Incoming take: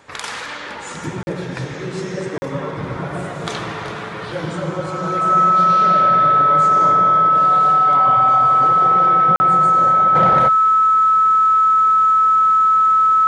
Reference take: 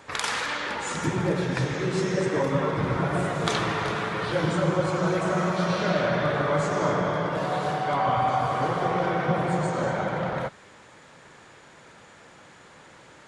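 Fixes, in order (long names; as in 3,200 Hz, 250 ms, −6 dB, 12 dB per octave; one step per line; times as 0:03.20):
notch filter 1,300 Hz, Q 30
repair the gap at 0:01.23/0:02.38/0:09.36, 40 ms
level 0 dB, from 0:10.15 −9 dB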